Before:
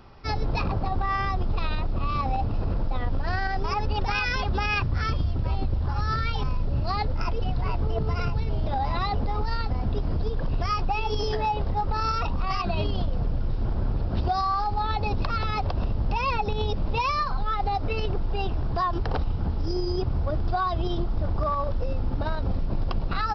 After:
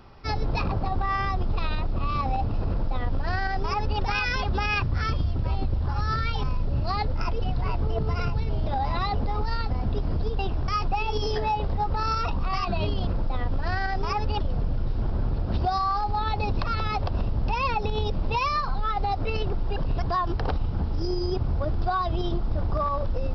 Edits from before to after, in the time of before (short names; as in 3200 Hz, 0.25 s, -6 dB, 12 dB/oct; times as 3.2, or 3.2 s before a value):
2.68–4.02 copy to 13.04
10.39–10.65 swap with 18.39–18.68